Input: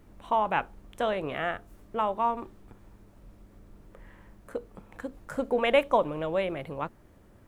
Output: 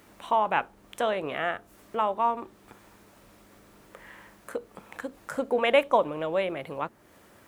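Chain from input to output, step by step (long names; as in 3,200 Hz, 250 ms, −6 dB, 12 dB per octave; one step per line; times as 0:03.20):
high-pass filter 250 Hz 6 dB per octave
one half of a high-frequency compander encoder only
level +2 dB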